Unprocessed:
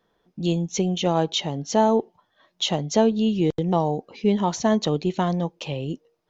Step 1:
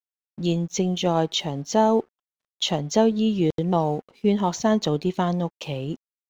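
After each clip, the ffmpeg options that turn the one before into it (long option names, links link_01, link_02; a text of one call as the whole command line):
ffmpeg -i in.wav -af "aeval=exprs='sgn(val(0))*max(abs(val(0))-0.00282,0)':channel_layout=same,agate=range=-10dB:threshold=-40dB:ratio=16:detection=peak" out.wav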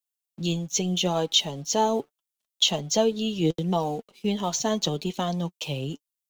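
ffmpeg -i in.wav -filter_complex "[0:a]flanger=delay=3.7:depth=3.9:regen=41:speed=0.77:shape=triangular,acrossover=split=200[link_01][link_02];[link_02]aexciter=amount=2.7:drive=5.1:freq=2700[link_03];[link_01][link_03]amix=inputs=2:normalize=0" out.wav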